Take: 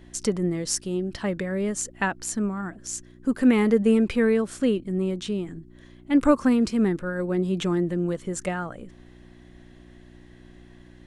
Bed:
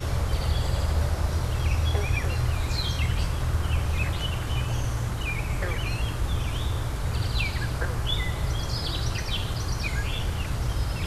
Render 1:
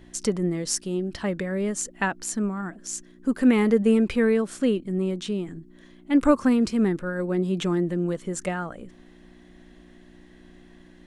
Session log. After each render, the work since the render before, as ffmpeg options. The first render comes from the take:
-af "bandreject=f=60:t=h:w=4,bandreject=f=120:t=h:w=4"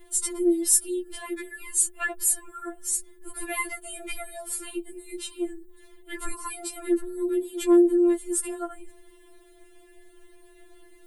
-af "aexciter=amount=12.6:drive=1.5:freq=8500,afftfilt=real='re*4*eq(mod(b,16),0)':imag='im*4*eq(mod(b,16),0)':win_size=2048:overlap=0.75"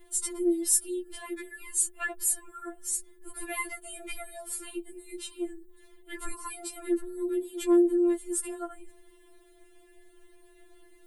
-af "volume=0.631"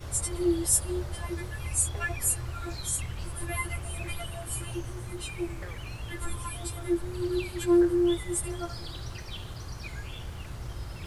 -filter_complex "[1:a]volume=0.282[s0];[0:a][s0]amix=inputs=2:normalize=0"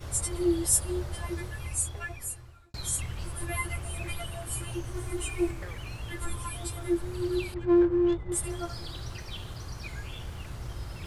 -filter_complex "[0:a]asettb=1/sr,asplit=3[s0][s1][s2];[s0]atrim=end=4.944[s3];[s1]atrim=start=4.94:end=5.51,asetpts=PTS-STARTPTS,afade=t=in:d=0.004:c=qsin,afade=t=out:st=0.566:d=0.004:c=qsin,aecho=1:1:2.8:0.96,atrim=end_sample=25137[s4];[s2]atrim=start=5.506[s5];[s3][s4]acrossfade=d=0.004:c1=hsin:c2=qsin[s6];[s6][s5]acrossfade=d=0.004:c1=qsin:c2=hsin,asettb=1/sr,asplit=3[s7][s8][s9];[s7]atrim=end=7.544[s10];[s8]atrim=start=7.54:end=8.32,asetpts=PTS-STARTPTS,afade=t=in:d=0.004:c=qsin,afade=t=out:st=0.776:d=0.004:c=qsin,adynamicsmooth=sensitivity=2:basefreq=830[s11];[s9]atrim=start=8.316[s12];[s10][s11]acrossfade=d=0.004:c1=hsin:c2=qsin[s13];[s13][s12]acrossfade=d=0.004:c1=qsin:c2=hsin,asplit=2[s14][s15];[s14]atrim=end=2.74,asetpts=PTS-STARTPTS,afade=t=out:st=1.38:d=1.36[s16];[s15]atrim=start=2.74,asetpts=PTS-STARTPTS,afade=t=in:d=0.004:c=hsin[s17];[s16][s17]concat=n=2:v=0:a=1"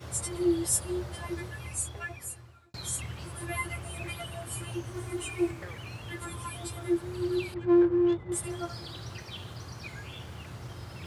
-af "highpass=f=86:w=0.5412,highpass=f=86:w=1.3066,equalizer=f=11000:w=0.62:g=-4"

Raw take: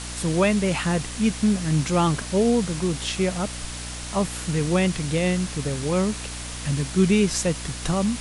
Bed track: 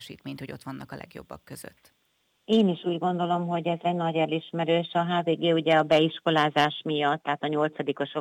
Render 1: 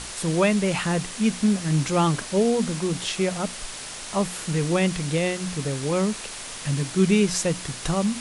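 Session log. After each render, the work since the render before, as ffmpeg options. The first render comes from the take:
-af "bandreject=f=60:t=h:w=6,bandreject=f=120:t=h:w=6,bandreject=f=180:t=h:w=6,bandreject=f=240:t=h:w=6,bandreject=f=300:t=h:w=6"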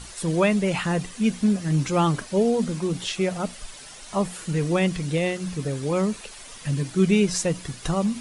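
-af "afftdn=nr=10:nf=-36"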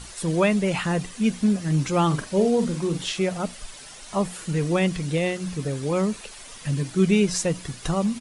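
-filter_complex "[0:a]asplit=3[s0][s1][s2];[s0]afade=t=out:st=2.1:d=0.02[s3];[s1]asplit=2[s4][s5];[s5]adelay=46,volume=0.376[s6];[s4][s6]amix=inputs=2:normalize=0,afade=t=in:st=2.1:d=0.02,afade=t=out:st=3.18:d=0.02[s7];[s2]afade=t=in:st=3.18:d=0.02[s8];[s3][s7][s8]amix=inputs=3:normalize=0"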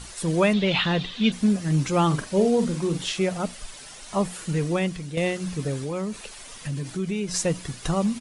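-filter_complex "[0:a]asettb=1/sr,asplit=3[s0][s1][s2];[s0]atrim=end=0.534[s3];[s1]atrim=start=0.53:end=1.32,asetpts=PTS-STARTPTS,afade=t=in:d=0.004:c=qsin,afade=t=out:st=0.786:d=0.004:c=qsin,lowpass=f=3600:t=q:w=6.1[s4];[s2]atrim=start=1.316[s5];[s3][s4]acrossfade=d=0.004:c1=hsin:c2=qsin[s6];[s6][s5]acrossfade=d=0.004:c1=qsin:c2=hsin,asettb=1/sr,asplit=3[s7][s8][s9];[s7]atrim=end=5.824[s10];[s8]atrim=start=5.82:end=7.34,asetpts=PTS-STARTPTS,afade=t=in:d=0.004:c=qsin,afade=t=out:st=1.516:d=0.004:c=qsin,acompressor=threshold=0.0398:ratio=2.5:attack=3.2:release=140:knee=1:detection=peak[s11];[s9]atrim=start=7.336[s12];[s10][s11]acrossfade=d=0.004:c1=hsin:c2=qsin[s13];[s13][s12]acrossfade=d=0.004:c1=qsin:c2=hsin,asplit=2[s14][s15];[s14]atrim=end=5.17,asetpts=PTS-STARTPTS,afade=t=out:st=4.51:d=0.66:silence=0.354813[s16];[s15]atrim=start=5.17,asetpts=PTS-STARTPTS,afade=t=in:d=0.004:c=hsin:silence=0.354813[s17];[s16][s17]concat=n=2:v=0:a=1"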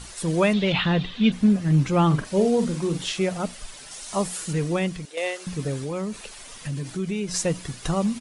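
-filter_complex "[0:a]asettb=1/sr,asplit=3[s0][s1][s2];[s0]atrim=end=0.724[s3];[s1]atrim=start=0.72:end=2.25,asetpts=PTS-STARTPTS,afade=t=in:d=0.004:c=qsin,afade=t=out:st=1.526:d=0.004:c=qsin,bass=f=250:g=4,treble=f=4000:g=-7[s4];[s2]atrim=start=2.246[s5];[s3][s4]acrossfade=d=0.004:c1=hsin:c2=qsin[s6];[s6][s5]acrossfade=d=0.004:c1=qsin:c2=hsin,asettb=1/sr,asplit=3[s7][s8][s9];[s7]atrim=end=3.914[s10];[s8]atrim=start=3.91:end=4.53,asetpts=PTS-STARTPTS,afade=t=in:d=0.004:c=qsin,afade=t=out:st=0.616:d=0.004:c=qsin,bass=f=250:g=-3,treble=f=4000:g=7[s11];[s9]atrim=start=4.526[s12];[s10][s11]acrossfade=d=0.004:c1=hsin:c2=qsin[s13];[s13][s12]acrossfade=d=0.004:c1=qsin:c2=hsin,asettb=1/sr,asplit=3[s14][s15][s16];[s14]atrim=end=5.054[s17];[s15]atrim=start=5.05:end=5.47,asetpts=PTS-STARTPTS,afade=t=in:d=0.004:c=qsin,afade=t=out:st=0.416:d=0.004:c=qsin,highpass=f=440:w=0.5412,highpass=f=440:w=1.3066[s18];[s16]atrim=start=5.466[s19];[s17][s18]acrossfade=d=0.004:c1=hsin:c2=qsin[s20];[s20][s19]acrossfade=d=0.004:c1=qsin:c2=hsin"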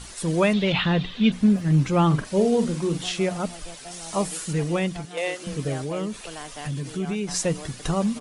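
-filter_complex "[1:a]volume=0.15[s0];[0:a][s0]amix=inputs=2:normalize=0"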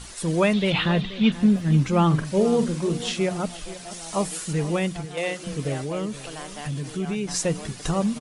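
-af "aecho=1:1:480:0.168"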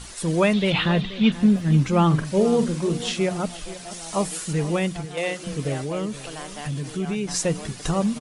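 -af "volume=1.12"

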